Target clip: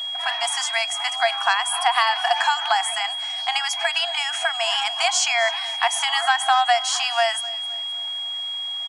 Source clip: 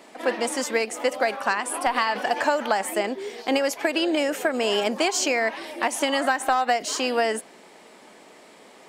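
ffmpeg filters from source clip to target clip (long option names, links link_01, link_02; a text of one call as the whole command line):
ffmpeg -i in.wav -af "aecho=1:1:259|518|777|1036:0.112|0.0505|0.0227|0.0102,afftfilt=real='re*between(b*sr/4096,660,11000)':imag='im*between(b*sr/4096,660,11000)':win_size=4096:overlap=0.75,aeval=exprs='val(0)+0.0316*sin(2*PI*3300*n/s)':channel_layout=same,volume=4dB" out.wav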